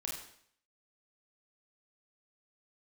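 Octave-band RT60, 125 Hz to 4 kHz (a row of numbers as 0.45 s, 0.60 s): 0.65 s, 0.65 s, 0.65 s, 0.60 s, 0.65 s, 0.60 s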